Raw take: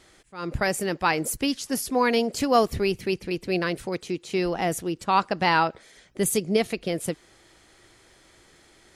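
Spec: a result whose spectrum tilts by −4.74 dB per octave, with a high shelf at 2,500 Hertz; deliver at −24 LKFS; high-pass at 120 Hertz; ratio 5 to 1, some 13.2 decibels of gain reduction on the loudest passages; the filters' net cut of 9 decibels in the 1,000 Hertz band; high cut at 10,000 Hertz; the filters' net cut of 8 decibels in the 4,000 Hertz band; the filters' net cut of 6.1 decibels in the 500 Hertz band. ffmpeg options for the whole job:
ffmpeg -i in.wav -af "highpass=120,lowpass=10000,equalizer=frequency=500:width_type=o:gain=-5.5,equalizer=frequency=1000:width_type=o:gain=-9,highshelf=frequency=2500:gain=-3.5,equalizer=frequency=4000:width_type=o:gain=-7,acompressor=threshold=-37dB:ratio=5,volume=17dB" out.wav

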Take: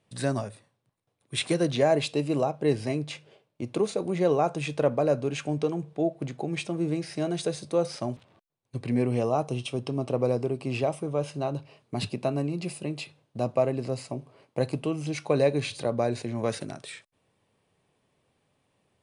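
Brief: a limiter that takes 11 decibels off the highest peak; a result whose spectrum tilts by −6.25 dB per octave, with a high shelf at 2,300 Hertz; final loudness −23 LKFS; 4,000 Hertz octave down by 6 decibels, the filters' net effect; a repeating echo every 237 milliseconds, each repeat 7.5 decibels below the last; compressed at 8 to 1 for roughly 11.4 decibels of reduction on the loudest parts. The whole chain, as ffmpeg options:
ffmpeg -i in.wav -af "highshelf=frequency=2300:gain=-5,equalizer=frequency=4000:width_type=o:gain=-3,acompressor=threshold=-30dB:ratio=8,alimiter=level_in=4.5dB:limit=-24dB:level=0:latency=1,volume=-4.5dB,aecho=1:1:237|474|711|948|1185:0.422|0.177|0.0744|0.0312|0.0131,volume=15.5dB" out.wav

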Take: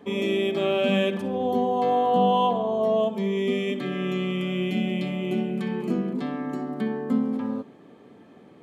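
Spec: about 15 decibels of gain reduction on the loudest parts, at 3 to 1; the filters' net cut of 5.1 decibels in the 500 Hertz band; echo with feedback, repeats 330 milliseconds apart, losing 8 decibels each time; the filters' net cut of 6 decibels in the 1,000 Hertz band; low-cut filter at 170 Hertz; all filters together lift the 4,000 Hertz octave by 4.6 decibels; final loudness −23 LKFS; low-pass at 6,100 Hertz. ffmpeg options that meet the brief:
ffmpeg -i in.wav -af "highpass=170,lowpass=6100,equalizer=frequency=500:width_type=o:gain=-5,equalizer=frequency=1000:width_type=o:gain=-6.5,equalizer=frequency=4000:width_type=o:gain=7.5,acompressor=threshold=-42dB:ratio=3,aecho=1:1:330|660|990|1320|1650:0.398|0.159|0.0637|0.0255|0.0102,volume=17dB" out.wav

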